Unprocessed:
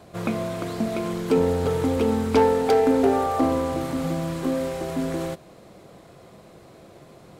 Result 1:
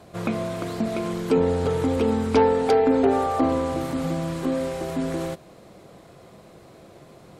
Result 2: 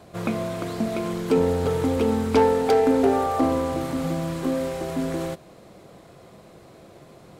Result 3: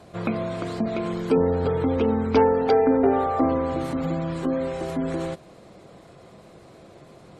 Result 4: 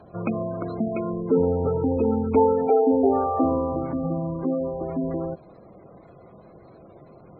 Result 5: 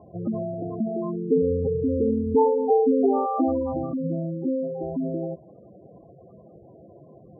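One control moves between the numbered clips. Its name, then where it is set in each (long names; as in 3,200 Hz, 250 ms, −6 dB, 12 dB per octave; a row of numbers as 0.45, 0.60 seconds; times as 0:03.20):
gate on every frequency bin, under each frame's peak: −45, −60, −35, −20, −10 decibels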